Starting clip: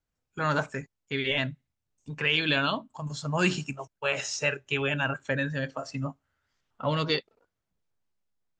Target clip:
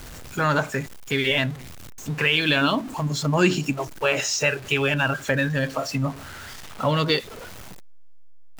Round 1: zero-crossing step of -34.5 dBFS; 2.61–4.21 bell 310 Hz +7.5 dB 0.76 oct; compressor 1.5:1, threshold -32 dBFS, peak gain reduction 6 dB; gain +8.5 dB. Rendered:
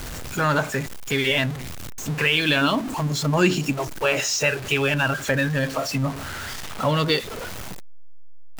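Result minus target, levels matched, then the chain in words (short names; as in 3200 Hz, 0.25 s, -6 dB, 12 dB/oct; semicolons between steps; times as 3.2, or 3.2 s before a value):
zero-crossing step: distortion +6 dB
zero-crossing step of -41 dBFS; 2.61–4.21 bell 310 Hz +7.5 dB 0.76 oct; compressor 1.5:1, threshold -32 dBFS, peak gain reduction 6 dB; gain +8.5 dB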